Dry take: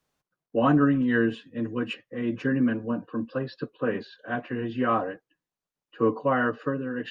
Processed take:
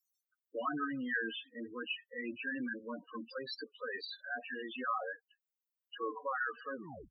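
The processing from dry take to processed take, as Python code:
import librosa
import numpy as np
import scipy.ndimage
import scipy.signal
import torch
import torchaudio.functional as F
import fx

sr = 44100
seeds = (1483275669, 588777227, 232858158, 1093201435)

p1 = fx.tape_stop_end(x, sr, length_s=0.37)
p2 = np.diff(p1, prepend=0.0)
p3 = fx.over_compress(p2, sr, threshold_db=-51.0, ratio=-1.0)
p4 = p2 + (p3 * 10.0 ** (-1.0 / 20.0))
p5 = fx.spec_topn(p4, sr, count=8)
y = p5 * 10.0 ** (6.5 / 20.0)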